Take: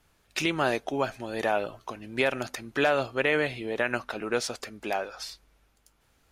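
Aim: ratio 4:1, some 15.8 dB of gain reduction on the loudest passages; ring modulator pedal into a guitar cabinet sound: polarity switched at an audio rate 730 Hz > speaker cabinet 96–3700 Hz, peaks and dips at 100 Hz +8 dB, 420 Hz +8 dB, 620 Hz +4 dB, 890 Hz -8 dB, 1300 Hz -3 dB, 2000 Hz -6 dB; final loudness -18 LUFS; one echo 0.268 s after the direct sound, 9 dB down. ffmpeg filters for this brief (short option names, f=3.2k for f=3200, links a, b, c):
-af "acompressor=threshold=-40dB:ratio=4,aecho=1:1:268:0.355,aeval=exprs='val(0)*sgn(sin(2*PI*730*n/s))':c=same,highpass=96,equalizer=f=100:t=q:w=4:g=8,equalizer=f=420:t=q:w=4:g=8,equalizer=f=620:t=q:w=4:g=4,equalizer=f=890:t=q:w=4:g=-8,equalizer=f=1.3k:t=q:w=4:g=-3,equalizer=f=2k:t=q:w=4:g=-6,lowpass=f=3.7k:w=0.5412,lowpass=f=3.7k:w=1.3066,volume=24.5dB"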